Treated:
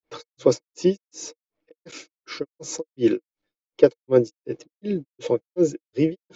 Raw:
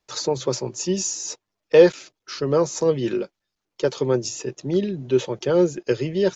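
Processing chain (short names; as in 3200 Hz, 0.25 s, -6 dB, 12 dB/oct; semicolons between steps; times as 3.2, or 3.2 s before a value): low-pass opened by the level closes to 3000 Hz, open at -17.5 dBFS; grains 0.239 s, grains 2.7/s, spray 33 ms, pitch spread up and down by 0 st; small resonant body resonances 310/470/2200 Hz, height 12 dB, ringing for 45 ms; gain +1 dB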